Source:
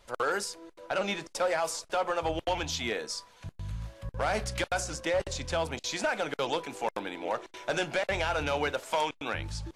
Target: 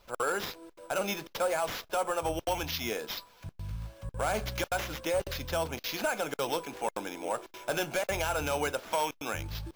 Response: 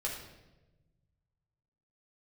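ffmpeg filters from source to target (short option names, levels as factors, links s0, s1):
-af "bandreject=f=1900:w=7,acrusher=samples=5:mix=1:aa=0.000001,volume=0.891"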